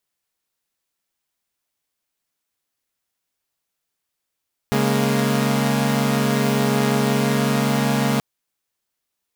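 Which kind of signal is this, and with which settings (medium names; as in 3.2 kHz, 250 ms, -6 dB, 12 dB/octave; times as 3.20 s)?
chord C#3/G#3/A#3 saw, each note -19 dBFS 3.48 s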